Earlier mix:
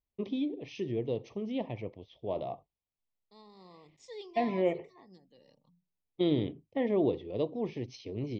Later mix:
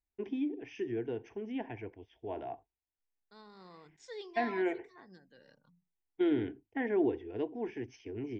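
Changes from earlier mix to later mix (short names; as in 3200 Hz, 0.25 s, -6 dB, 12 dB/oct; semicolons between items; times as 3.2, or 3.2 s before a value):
first voice: add fixed phaser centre 830 Hz, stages 8; master: remove Butterworth band-stop 1500 Hz, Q 1.8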